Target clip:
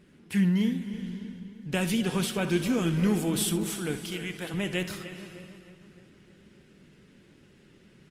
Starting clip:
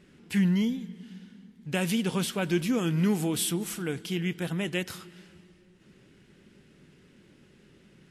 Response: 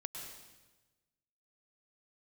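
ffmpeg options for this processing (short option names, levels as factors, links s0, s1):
-filter_complex "[0:a]asettb=1/sr,asplit=3[s0][s1][s2];[s0]atrim=end=3.964[s3];[s1]atrim=start=3.96:end=4.54,asetpts=PTS-STARTPTS,afade=t=in:d=0.004:c=qsin,afade=t=out:st=0.576:d=0.004:c=qsin,highpass=f=490:p=1[s4];[s2]atrim=start=4.536[s5];[s3][s4]acrossfade=d=0.004:c1=hsin:c2=qsin[s6];[s6][s5]acrossfade=d=0.004:c1=qsin:c2=hsin,asplit=2[s7][s8];[s8]adelay=306,lowpass=f=2800:p=1,volume=0.224,asplit=2[s9][s10];[s10]adelay=306,lowpass=f=2800:p=1,volume=0.54,asplit=2[s11][s12];[s12]adelay=306,lowpass=f=2800:p=1,volume=0.54,asplit=2[s13][s14];[s14]adelay=306,lowpass=f=2800:p=1,volume=0.54,asplit=2[s15][s16];[s16]adelay=306,lowpass=f=2800:p=1,volume=0.54,asplit=2[s17][s18];[s18]adelay=306,lowpass=f=2800:p=1,volume=0.54[s19];[s7][s9][s11][s13][s15][s17][s19]amix=inputs=7:normalize=0,asplit=2[s20][s21];[1:a]atrim=start_sample=2205,asetrate=24255,aresample=44100,adelay=66[s22];[s21][s22]afir=irnorm=-1:irlink=0,volume=0.251[s23];[s20][s23]amix=inputs=2:normalize=0" -ar 48000 -c:a libopus -b:a 32k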